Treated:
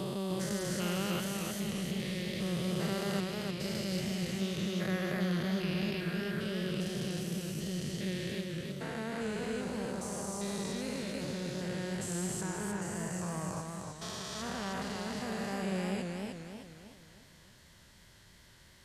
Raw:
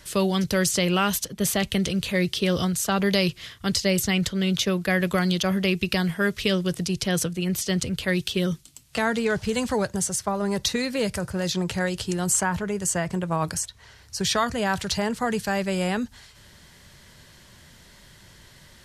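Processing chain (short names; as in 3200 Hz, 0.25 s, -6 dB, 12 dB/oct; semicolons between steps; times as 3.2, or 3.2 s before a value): stepped spectrum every 0.4 s; warbling echo 0.308 s, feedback 45%, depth 102 cents, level -4 dB; gain -8.5 dB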